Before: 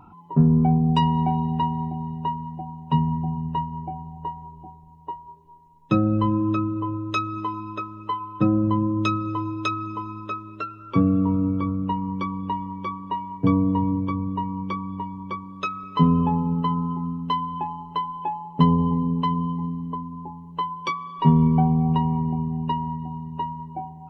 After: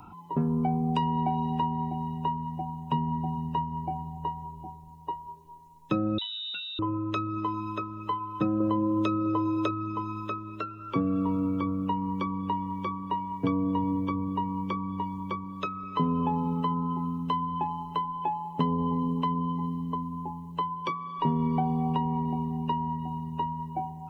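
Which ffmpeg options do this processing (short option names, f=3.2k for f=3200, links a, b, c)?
-filter_complex "[0:a]asettb=1/sr,asplit=3[a][b][c];[a]atrim=end=6.184[d];[b]atrim=start=6.18:end=6.79,asetpts=PTS-STARTPTS,afade=t=in:d=0.004:c=qsin,afade=t=out:st=0.606:d=0.004:c=qsin,lowpass=f=3.4k:t=q:w=0.5098,lowpass=f=3.4k:t=q:w=0.6013,lowpass=f=3.4k:t=q:w=0.9,lowpass=f=3.4k:t=q:w=2.563,afreqshift=-4000[e];[c]atrim=start=6.786[f];[d][e]acrossfade=d=0.004:c1=hsin:c2=qsin[g];[g][f]acrossfade=d=0.004:c1=qsin:c2=hsin,asettb=1/sr,asplit=3[h][i][j];[h]atrim=end=8.604[k];[i]atrim=start=8.6:end=9.71,asetpts=PTS-STARTPTS,afade=t=in:d=0.004:c=qsin,afade=t=out:st=1.106:d=0.004:c=qsin,equalizer=f=520:w=0.85:g=9.5[l];[j]atrim=start=9.706[m];[k][l]acrossfade=d=0.004:c1=hsin:c2=qsin[n];[n][m]acrossfade=d=0.004:c1=qsin:c2=hsin,highshelf=f=3k:g=11.5,acrossover=split=240|910|2800[o][p][q][r];[o]acompressor=threshold=-35dB:ratio=4[s];[p]acompressor=threshold=-27dB:ratio=4[t];[q]acompressor=threshold=-38dB:ratio=4[u];[r]acompressor=threshold=-58dB:ratio=4[v];[s][t][u][v]amix=inputs=4:normalize=0"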